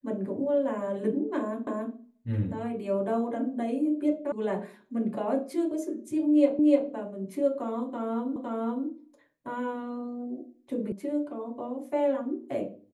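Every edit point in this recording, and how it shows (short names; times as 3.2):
1.67 repeat of the last 0.28 s
4.32 sound cut off
6.59 repeat of the last 0.3 s
8.36 repeat of the last 0.51 s
10.92 sound cut off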